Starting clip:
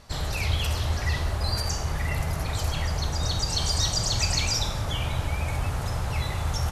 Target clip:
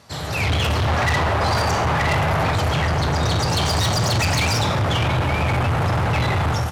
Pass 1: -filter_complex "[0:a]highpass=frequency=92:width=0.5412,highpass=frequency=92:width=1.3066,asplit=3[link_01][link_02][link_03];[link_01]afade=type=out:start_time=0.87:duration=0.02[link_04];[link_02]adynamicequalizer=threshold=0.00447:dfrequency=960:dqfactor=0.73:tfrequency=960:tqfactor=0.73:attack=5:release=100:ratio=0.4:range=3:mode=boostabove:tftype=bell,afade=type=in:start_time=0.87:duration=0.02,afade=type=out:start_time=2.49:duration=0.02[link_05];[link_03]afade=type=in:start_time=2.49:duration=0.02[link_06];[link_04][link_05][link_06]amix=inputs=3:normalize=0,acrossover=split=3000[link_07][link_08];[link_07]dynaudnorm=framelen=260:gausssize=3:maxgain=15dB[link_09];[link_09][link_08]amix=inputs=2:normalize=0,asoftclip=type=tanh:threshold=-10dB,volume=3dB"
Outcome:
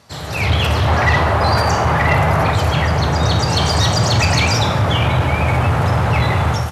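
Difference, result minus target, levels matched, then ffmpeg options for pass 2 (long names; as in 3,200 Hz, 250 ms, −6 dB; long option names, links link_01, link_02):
soft clipping: distortion −9 dB
-filter_complex "[0:a]highpass=frequency=92:width=0.5412,highpass=frequency=92:width=1.3066,asplit=3[link_01][link_02][link_03];[link_01]afade=type=out:start_time=0.87:duration=0.02[link_04];[link_02]adynamicequalizer=threshold=0.00447:dfrequency=960:dqfactor=0.73:tfrequency=960:tqfactor=0.73:attack=5:release=100:ratio=0.4:range=3:mode=boostabove:tftype=bell,afade=type=in:start_time=0.87:duration=0.02,afade=type=out:start_time=2.49:duration=0.02[link_05];[link_03]afade=type=in:start_time=2.49:duration=0.02[link_06];[link_04][link_05][link_06]amix=inputs=3:normalize=0,acrossover=split=3000[link_07][link_08];[link_07]dynaudnorm=framelen=260:gausssize=3:maxgain=15dB[link_09];[link_09][link_08]amix=inputs=2:normalize=0,asoftclip=type=tanh:threshold=-19.5dB,volume=3dB"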